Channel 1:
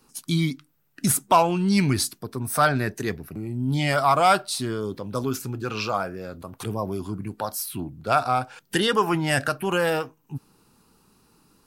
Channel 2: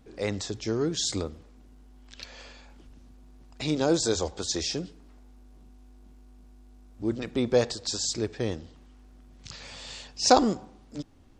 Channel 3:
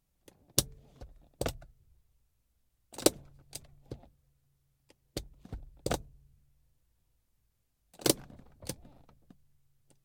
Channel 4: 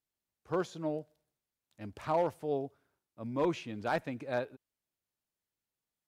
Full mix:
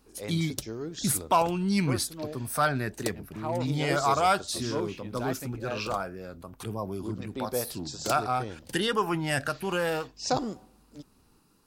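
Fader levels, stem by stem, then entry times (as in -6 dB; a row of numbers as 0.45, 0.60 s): -5.5, -9.0, -8.5, -2.5 dB; 0.00, 0.00, 0.00, 1.35 s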